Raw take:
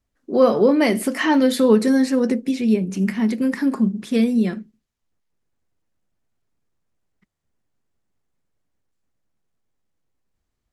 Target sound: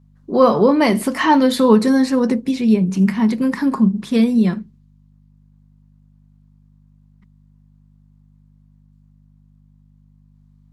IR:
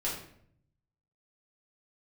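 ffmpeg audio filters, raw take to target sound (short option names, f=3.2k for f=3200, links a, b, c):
-af "aeval=exprs='val(0)+0.00224*(sin(2*PI*50*n/s)+sin(2*PI*2*50*n/s)/2+sin(2*PI*3*50*n/s)/3+sin(2*PI*4*50*n/s)/4+sin(2*PI*5*50*n/s)/5)':c=same,equalizer=f=160:t=o:w=0.67:g=10,equalizer=f=1k:t=o:w=0.67:g=10,equalizer=f=4k:t=o:w=0.67:g=4"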